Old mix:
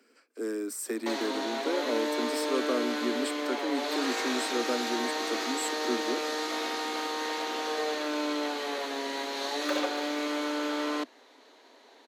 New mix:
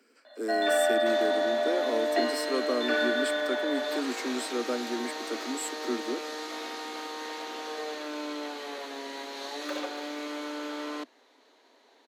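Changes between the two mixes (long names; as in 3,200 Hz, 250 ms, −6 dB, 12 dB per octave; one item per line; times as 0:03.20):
first sound: unmuted
second sound −5.0 dB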